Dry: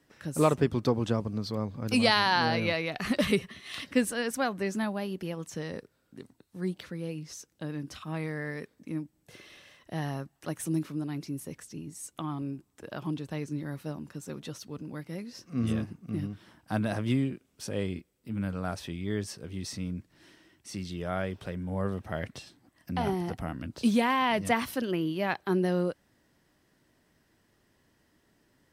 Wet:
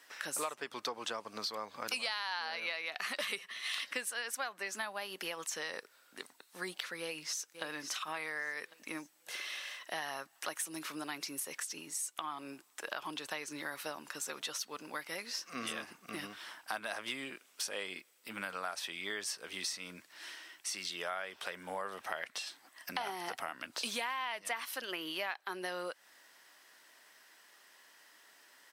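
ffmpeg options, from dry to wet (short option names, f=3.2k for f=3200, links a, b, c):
-filter_complex "[0:a]asplit=2[a][b];[b]afade=t=in:st=6.99:d=0.01,afade=t=out:st=7.63:d=0.01,aecho=0:1:550|1100|1650|2200:0.266073|0.0931254|0.0325939|0.0114079[c];[a][c]amix=inputs=2:normalize=0,highpass=1k,acompressor=threshold=-48dB:ratio=6,volume=12dB"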